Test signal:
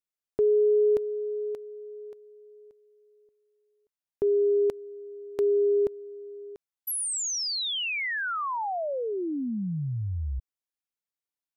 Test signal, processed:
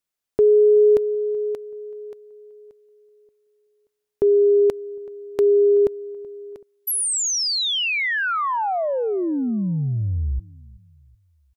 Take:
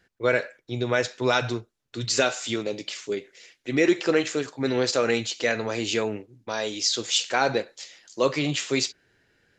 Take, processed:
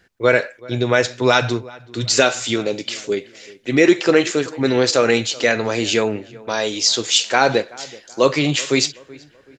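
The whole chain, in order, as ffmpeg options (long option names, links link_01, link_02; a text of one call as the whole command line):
ffmpeg -i in.wav -filter_complex "[0:a]asplit=2[link_01][link_02];[link_02]adelay=379,lowpass=frequency=2100:poles=1,volume=-21.5dB,asplit=2[link_03][link_04];[link_04]adelay=379,lowpass=frequency=2100:poles=1,volume=0.4,asplit=2[link_05][link_06];[link_06]adelay=379,lowpass=frequency=2100:poles=1,volume=0.4[link_07];[link_01][link_03][link_05][link_07]amix=inputs=4:normalize=0,volume=7.5dB" out.wav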